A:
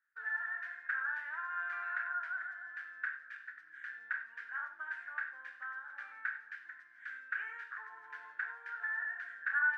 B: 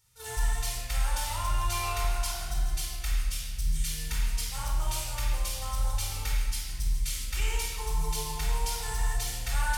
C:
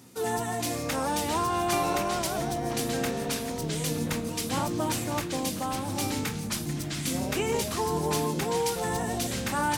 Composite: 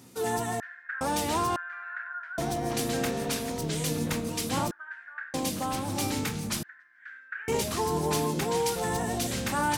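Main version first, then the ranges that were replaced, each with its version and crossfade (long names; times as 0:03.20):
C
0:00.60–0:01.01: punch in from A
0:01.56–0:02.38: punch in from A
0:04.71–0:05.34: punch in from A
0:06.63–0:07.48: punch in from A
not used: B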